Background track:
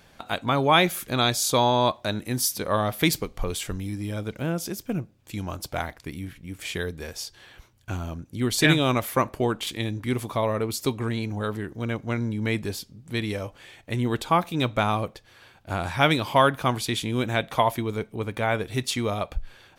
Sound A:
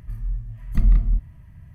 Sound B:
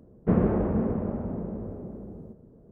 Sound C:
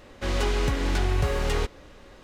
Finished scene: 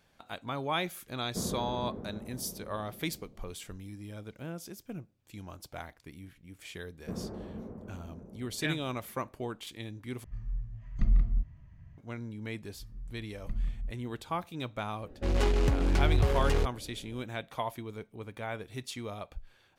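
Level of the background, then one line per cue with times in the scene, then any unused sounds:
background track −13 dB
0:01.08: mix in B −14 dB
0:06.80: mix in B −16.5 dB
0:10.24: overwrite with A −8 dB + downsampling to 16,000 Hz
0:12.72: mix in A −16.5 dB
0:15.00: mix in C −0.5 dB + adaptive Wiener filter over 41 samples

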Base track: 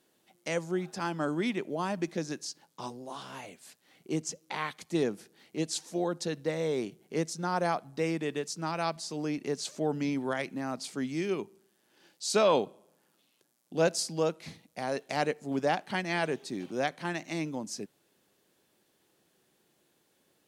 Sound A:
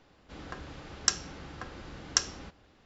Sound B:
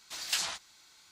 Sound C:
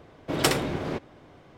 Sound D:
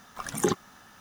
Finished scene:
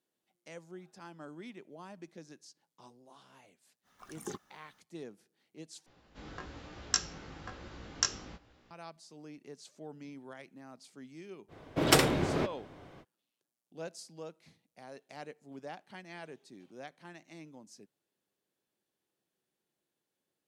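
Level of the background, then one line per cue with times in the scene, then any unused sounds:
base track −16.5 dB
0:03.83: mix in D −16.5 dB, fades 0.05 s
0:05.86: overwrite with A + chorus effect 1.1 Hz, delay 16.5 ms, depth 2.9 ms
0:11.48: mix in C −0.5 dB, fades 0.05 s
not used: B

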